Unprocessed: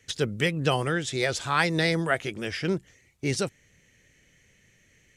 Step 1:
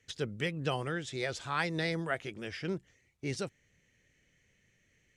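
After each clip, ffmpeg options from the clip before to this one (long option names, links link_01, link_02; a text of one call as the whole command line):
ffmpeg -i in.wav -af "highshelf=frequency=9500:gain=-10,volume=-8.5dB" out.wav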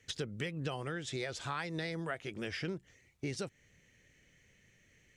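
ffmpeg -i in.wav -af "acompressor=threshold=-39dB:ratio=6,volume=4dB" out.wav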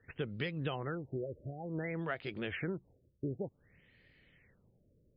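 ffmpeg -i in.wav -af "afftfilt=real='re*lt(b*sr/1024,620*pow(5100/620,0.5+0.5*sin(2*PI*0.55*pts/sr)))':imag='im*lt(b*sr/1024,620*pow(5100/620,0.5+0.5*sin(2*PI*0.55*pts/sr)))':win_size=1024:overlap=0.75,volume=1dB" out.wav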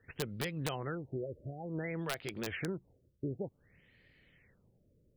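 ffmpeg -i in.wav -af "aeval=exprs='(mod(20*val(0)+1,2)-1)/20':channel_layout=same" out.wav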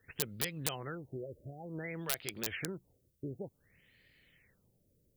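ffmpeg -i in.wav -af "crystalizer=i=3.5:c=0,volume=-4dB" out.wav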